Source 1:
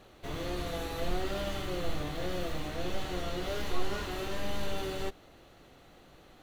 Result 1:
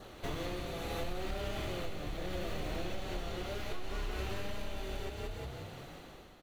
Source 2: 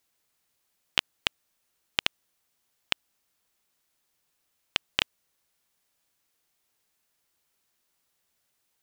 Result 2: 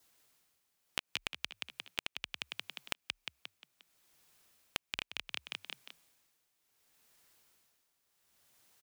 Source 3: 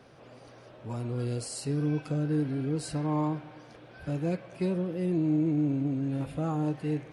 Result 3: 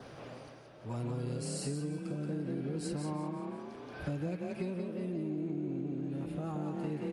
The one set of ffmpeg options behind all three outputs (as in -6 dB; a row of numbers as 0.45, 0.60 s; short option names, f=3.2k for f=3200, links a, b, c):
-filter_complex "[0:a]asplit=6[a][b][c][d][e][f];[b]adelay=177,afreqshift=32,volume=-4dB[g];[c]adelay=354,afreqshift=64,volume=-11.5dB[h];[d]adelay=531,afreqshift=96,volume=-19.1dB[i];[e]adelay=708,afreqshift=128,volume=-26.6dB[j];[f]adelay=885,afreqshift=160,volume=-34.1dB[k];[a][g][h][i][j][k]amix=inputs=6:normalize=0,adynamicequalizer=threshold=0.00251:dfrequency=2400:dqfactor=5.2:tfrequency=2400:tqfactor=5.2:attack=5:release=100:ratio=0.375:range=3:mode=boostabove:tftype=bell,tremolo=f=0.69:d=0.74,acompressor=threshold=-39dB:ratio=16,volume=6dB"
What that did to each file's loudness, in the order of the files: -4.0, -11.0, -7.0 LU